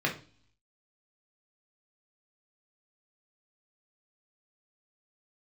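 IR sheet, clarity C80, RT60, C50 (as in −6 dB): 17.0 dB, 0.40 s, 10.5 dB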